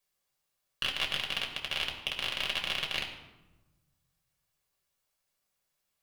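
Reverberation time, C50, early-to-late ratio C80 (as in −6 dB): 1.1 s, 7.0 dB, 9.0 dB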